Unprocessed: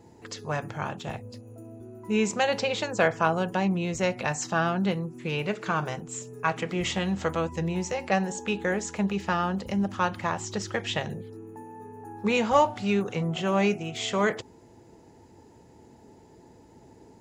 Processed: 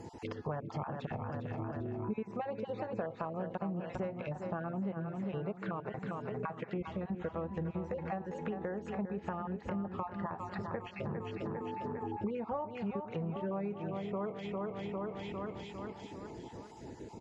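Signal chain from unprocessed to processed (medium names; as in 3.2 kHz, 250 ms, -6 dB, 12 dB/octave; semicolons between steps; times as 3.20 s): random holes in the spectrogram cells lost 26%; feedback delay 402 ms, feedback 52%, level -10 dB; compression 10:1, threshold -40 dBFS, peak gain reduction 24 dB; low-pass that closes with the level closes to 1.1 kHz, closed at -40 dBFS; trim +6 dB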